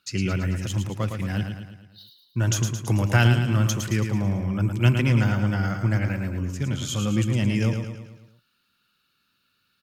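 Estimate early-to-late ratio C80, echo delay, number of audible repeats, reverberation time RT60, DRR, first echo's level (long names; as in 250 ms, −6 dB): no reverb audible, 110 ms, 6, no reverb audible, no reverb audible, −6.5 dB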